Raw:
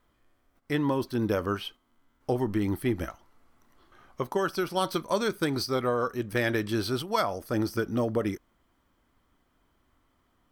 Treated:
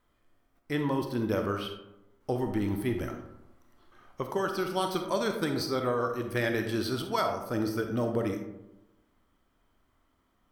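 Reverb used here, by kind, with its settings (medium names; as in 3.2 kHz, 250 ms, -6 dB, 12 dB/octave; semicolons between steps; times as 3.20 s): algorithmic reverb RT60 0.96 s, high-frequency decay 0.4×, pre-delay 5 ms, DRR 4.5 dB; trim -3 dB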